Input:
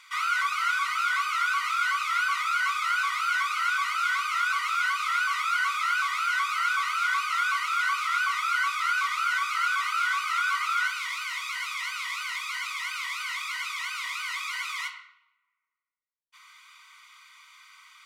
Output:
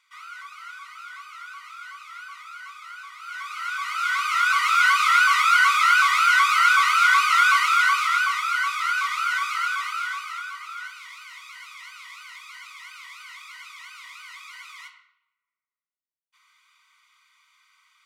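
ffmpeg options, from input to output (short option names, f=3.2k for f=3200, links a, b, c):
-af "volume=9dB,afade=t=in:st=3.18:d=0.65:silence=0.251189,afade=t=in:st=3.83:d=1.1:silence=0.281838,afade=t=out:st=7.55:d=0.89:silence=0.446684,afade=t=out:st=9.44:d=1.09:silence=0.266073"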